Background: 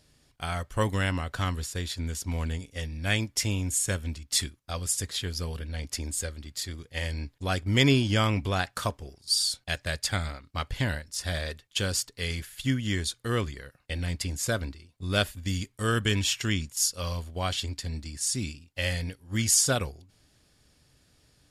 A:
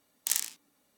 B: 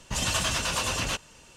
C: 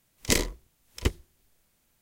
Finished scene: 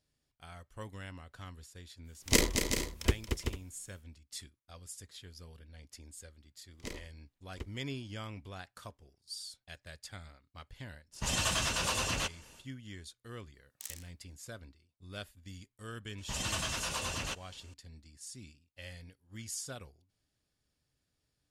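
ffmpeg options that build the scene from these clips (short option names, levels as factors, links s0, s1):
-filter_complex "[3:a]asplit=2[s0][s1];[2:a]asplit=2[s2][s3];[0:a]volume=0.119[s4];[s0]aecho=1:1:228|381|448:0.473|0.398|0.158[s5];[s1]aemphasis=mode=reproduction:type=cd[s6];[s5]atrim=end=2.01,asetpts=PTS-STARTPTS,volume=0.794,afade=t=in:d=0.05,afade=t=out:st=1.96:d=0.05,adelay=2030[s7];[s6]atrim=end=2.01,asetpts=PTS-STARTPTS,volume=0.126,afade=t=in:d=0.004:c=hsin,afade=t=out:st=2.006:d=0.004:c=hsin,adelay=6550[s8];[s2]atrim=end=1.56,asetpts=PTS-STARTPTS,volume=0.596,afade=t=in:d=0.1,afade=t=out:st=1.46:d=0.1,adelay=11110[s9];[1:a]atrim=end=0.97,asetpts=PTS-STARTPTS,volume=0.158,afade=t=in:d=0.004:c=hsin,afade=t=out:st=0.966:d=0.004:c=hsin,adelay=13540[s10];[s3]atrim=end=1.56,asetpts=PTS-STARTPTS,volume=0.376,afade=t=in:d=0.004:c=hsin,afade=t=out:st=1.556:d=0.004:c=hsin,adelay=16180[s11];[s4][s7][s8][s9][s10][s11]amix=inputs=6:normalize=0"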